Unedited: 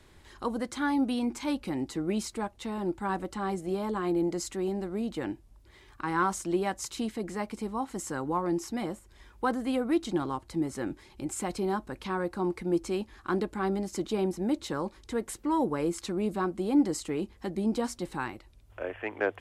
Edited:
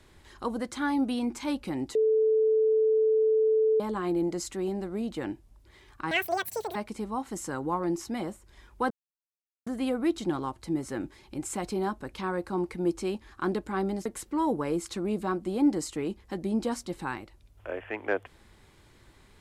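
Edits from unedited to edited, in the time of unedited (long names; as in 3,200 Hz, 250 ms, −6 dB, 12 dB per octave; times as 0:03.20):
0:01.95–0:03.80: beep over 438 Hz −20 dBFS
0:06.11–0:07.38: play speed 197%
0:09.53: splice in silence 0.76 s
0:13.92–0:15.18: remove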